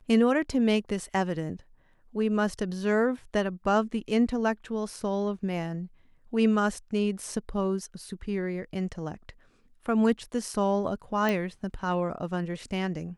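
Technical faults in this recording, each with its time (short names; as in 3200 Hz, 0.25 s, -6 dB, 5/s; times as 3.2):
11.29 pop -15 dBFS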